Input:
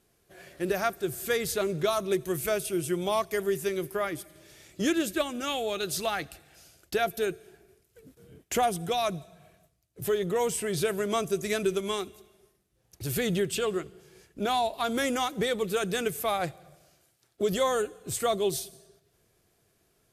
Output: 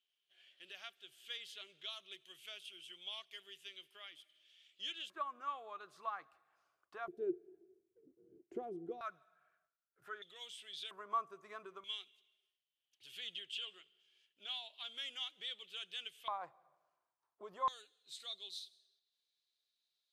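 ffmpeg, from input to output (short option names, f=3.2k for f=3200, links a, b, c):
-af "asetnsamples=n=441:p=0,asendcmd='5.1 bandpass f 1100;7.08 bandpass f 350;9.01 bandpass f 1400;10.22 bandpass f 3400;10.91 bandpass f 1100;11.84 bandpass f 3100;16.28 bandpass f 1000;17.68 bandpass f 3900',bandpass=f=3.1k:t=q:w=9.1:csg=0"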